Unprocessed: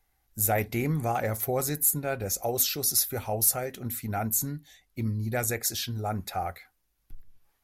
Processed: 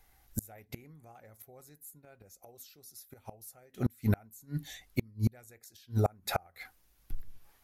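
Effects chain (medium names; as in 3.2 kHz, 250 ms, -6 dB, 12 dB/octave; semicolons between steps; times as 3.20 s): inverted gate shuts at -23 dBFS, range -34 dB; trim +7.5 dB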